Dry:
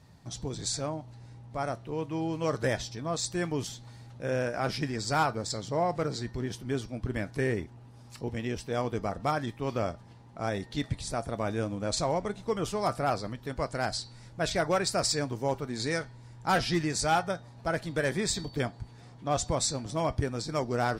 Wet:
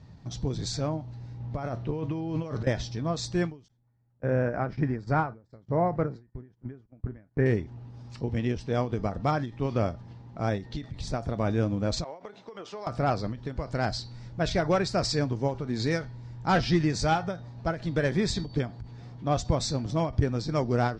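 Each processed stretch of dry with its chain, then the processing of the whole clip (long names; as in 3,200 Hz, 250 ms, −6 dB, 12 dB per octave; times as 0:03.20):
0:01.40–0:02.67: high-shelf EQ 7,900 Hz −9 dB + compressor whose output falls as the input rises −36 dBFS
0:03.68–0:07.46: flat-topped bell 5,900 Hz −15.5 dB 2.5 octaves + noise gate −41 dBFS, range −29 dB
0:12.04–0:12.87: high-pass filter 460 Hz + downward compressor 5 to 1, threshold −37 dBFS + high-frequency loss of the air 60 metres
whole clip: low-pass filter 6,200 Hz 24 dB per octave; low-shelf EQ 350 Hz +8.5 dB; every ending faded ahead of time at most 160 dB per second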